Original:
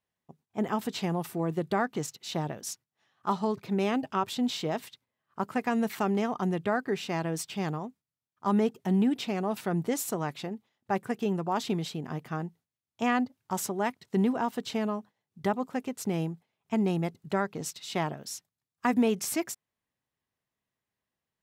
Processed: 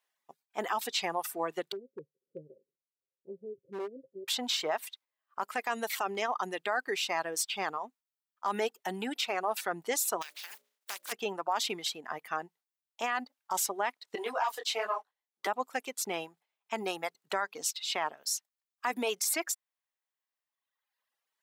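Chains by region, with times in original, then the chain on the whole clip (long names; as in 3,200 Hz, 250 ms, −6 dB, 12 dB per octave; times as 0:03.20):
0:01.72–0:04.28: Chebyshev low-pass with heavy ripple 550 Hz, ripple 9 dB + gain into a clipping stage and back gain 26.5 dB
0:10.21–0:11.11: compressing power law on the bin magnitudes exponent 0.28 + mains-hum notches 60/120/180/240/300/360/420/480/540/600 Hz + downward compressor 5 to 1, threshold −43 dBFS
0:14.15–0:15.47: high-pass filter 340 Hz 24 dB per octave + leveller curve on the samples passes 1 + micro pitch shift up and down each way 37 cents
whole clip: high-pass filter 750 Hz 12 dB per octave; reverb reduction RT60 1.5 s; brickwall limiter −27 dBFS; level +7 dB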